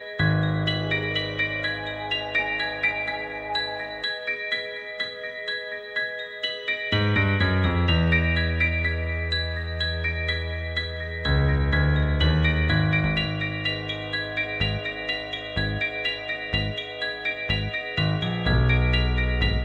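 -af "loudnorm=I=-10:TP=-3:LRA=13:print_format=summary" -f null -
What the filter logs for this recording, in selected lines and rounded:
Input Integrated:    -24.7 LUFS
Input True Peak:      -9.1 dBTP
Input LRA:             4.0 LU
Input Threshold:     -34.7 LUFS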